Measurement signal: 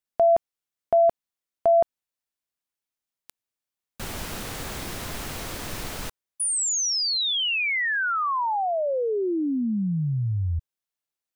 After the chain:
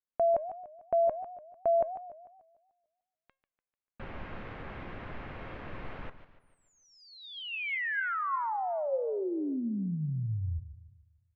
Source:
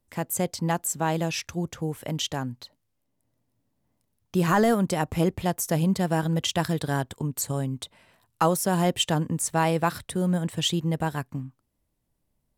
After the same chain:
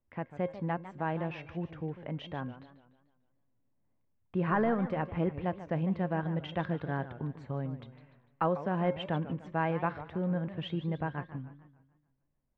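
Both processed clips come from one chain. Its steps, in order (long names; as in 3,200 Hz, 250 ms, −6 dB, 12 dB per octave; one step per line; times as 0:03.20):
low-pass filter 2,400 Hz 24 dB per octave
tuned comb filter 540 Hz, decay 0.28 s, harmonics all, mix 60%
feedback echo with a swinging delay time 148 ms, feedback 46%, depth 210 cents, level −13.5 dB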